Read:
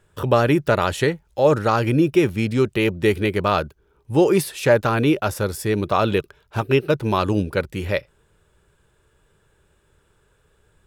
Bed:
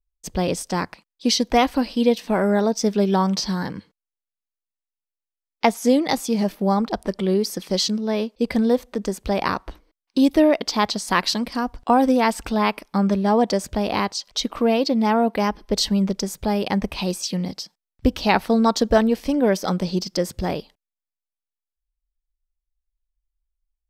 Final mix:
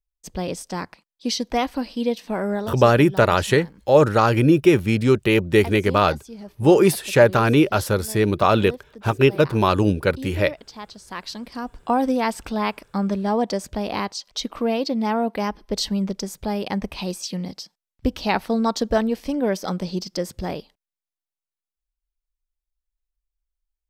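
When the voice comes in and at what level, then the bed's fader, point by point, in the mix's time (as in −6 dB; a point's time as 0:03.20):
2.50 s, +2.0 dB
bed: 0:02.53 −5 dB
0:02.90 −17 dB
0:10.95 −17 dB
0:11.80 −3.5 dB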